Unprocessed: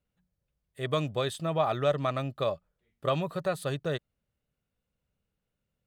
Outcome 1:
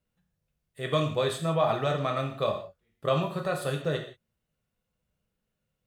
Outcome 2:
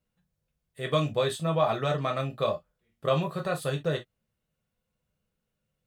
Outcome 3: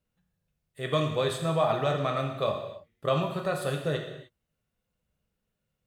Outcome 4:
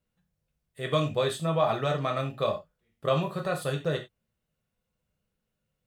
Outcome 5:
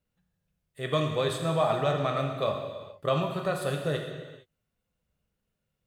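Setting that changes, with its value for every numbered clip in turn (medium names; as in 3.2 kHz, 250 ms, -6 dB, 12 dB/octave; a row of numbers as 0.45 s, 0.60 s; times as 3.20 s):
gated-style reverb, gate: 200 ms, 80 ms, 330 ms, 120 ms, 490 ms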